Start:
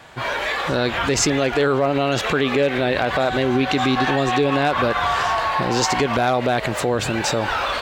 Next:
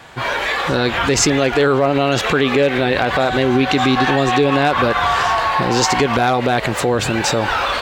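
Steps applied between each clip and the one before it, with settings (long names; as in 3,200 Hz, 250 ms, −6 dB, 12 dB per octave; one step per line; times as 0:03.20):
notch filter 620 Hz, Q 15
level +4 dB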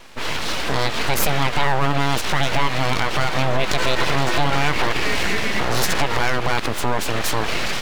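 full-wave rectification
level −1.5 dB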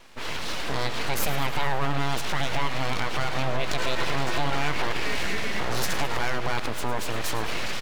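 repeating echo 106 ms, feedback 60%, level −13 dB
level −7.5 dB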